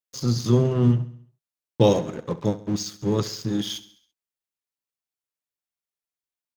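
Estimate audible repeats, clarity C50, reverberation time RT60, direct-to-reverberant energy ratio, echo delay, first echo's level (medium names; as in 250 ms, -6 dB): 4, no reverb, no reverb, no reverb, 67 ms, -16.5 dB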